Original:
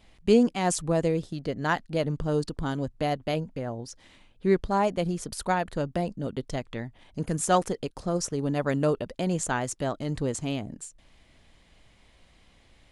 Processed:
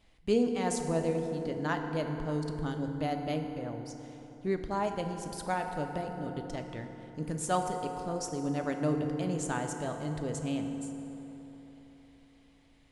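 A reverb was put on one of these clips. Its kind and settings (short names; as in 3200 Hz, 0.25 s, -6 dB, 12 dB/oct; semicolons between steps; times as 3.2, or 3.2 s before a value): FDN reverb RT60 3.9 s, high-frequency decay 0.45×, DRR 4.5 dB; gain -7.5 dB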